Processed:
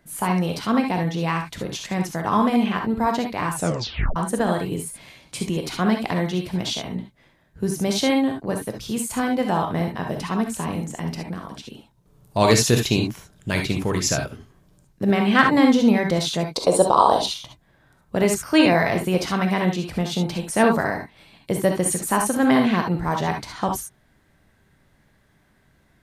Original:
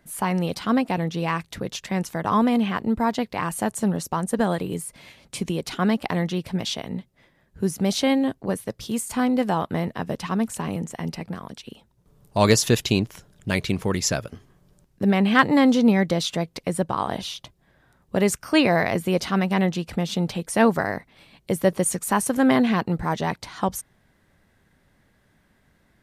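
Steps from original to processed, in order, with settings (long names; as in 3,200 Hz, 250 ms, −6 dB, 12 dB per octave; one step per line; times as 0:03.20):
0:16.52–0:17.26: graphic EQ with 10 bands 125 Hz −7 dB, 500 Hz +11 dB, 1,000 Hz +9 dB, 2,000 Hz −11 dB, 4,000 Hz +11 dB, 8,000 Hz +8 dB
reverb whose tail is shaped and stops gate 90 ms rising, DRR 3 dB
0:03.54: tape stop 0.62 s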